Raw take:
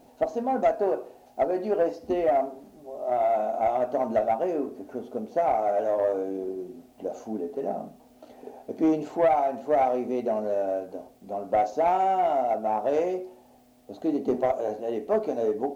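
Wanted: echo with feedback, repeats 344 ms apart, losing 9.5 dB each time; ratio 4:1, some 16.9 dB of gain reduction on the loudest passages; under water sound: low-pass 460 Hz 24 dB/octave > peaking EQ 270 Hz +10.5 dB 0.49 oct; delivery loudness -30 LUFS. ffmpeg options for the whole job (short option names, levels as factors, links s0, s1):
-af "acompressor=threshold=0.01:ratio=4,lowpass=f=460:w=0.5412,lowpass=f=460:w=1.3066,equalizer=f=270:t=o:w=0.49:g=10.5,aecho=1:1:344|688|1032|1376:0.335|0.111|0.0365|0.012,volume=3.76"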